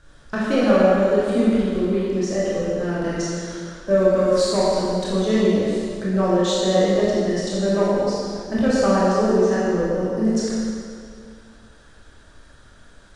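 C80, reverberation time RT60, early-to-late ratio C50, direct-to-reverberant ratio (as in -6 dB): -2.0 dB, 2.4 s, -4.0 dB, -8.5 dB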